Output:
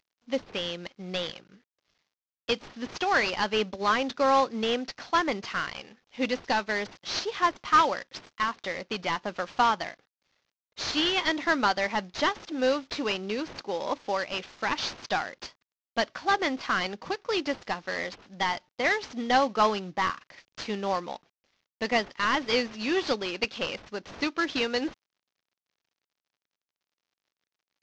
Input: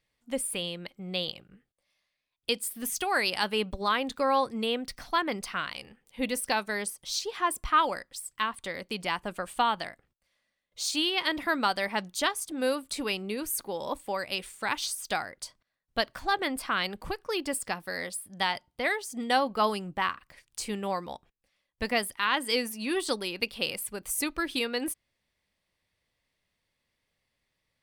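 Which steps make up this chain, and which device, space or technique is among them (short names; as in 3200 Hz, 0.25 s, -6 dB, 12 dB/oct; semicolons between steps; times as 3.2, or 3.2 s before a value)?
early wireless headset (HPF 200 Hz 12 dB/oct; CVSD 32 kbps); gain +3.5 dB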